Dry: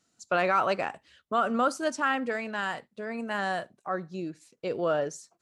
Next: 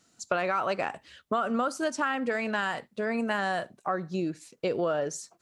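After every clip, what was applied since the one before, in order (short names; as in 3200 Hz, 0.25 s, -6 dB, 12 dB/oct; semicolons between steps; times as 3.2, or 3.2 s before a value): compressor 6:1, threshold -32 dBFS, peak gain reduction 11.5 dB; gain +7 dB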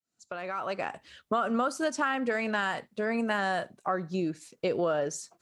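opening faded in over 1.14 s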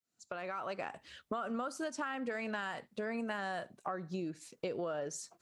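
compressor 2.5:1, threshold -37 dBFS, peak gain reduction 9.5 dB; gain -1.5 dB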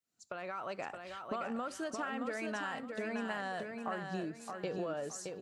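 feedback echo 0.62 s, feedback 31%, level -5 dB; gain -1 dB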